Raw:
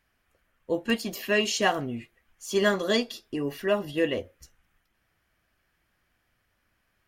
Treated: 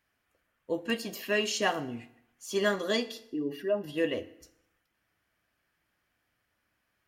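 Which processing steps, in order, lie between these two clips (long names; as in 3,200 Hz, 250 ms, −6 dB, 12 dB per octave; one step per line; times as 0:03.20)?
0:03.26–0:03.84: expanding power law on the bin magnitudes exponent 1.6
high-pass filter 110 Hz 6 dB per octave
feedback delay network reverb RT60 0.8 s, low-frequency decay 0.95×, high-frequency decay 0.85×, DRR 12.5 dB
level −4 dB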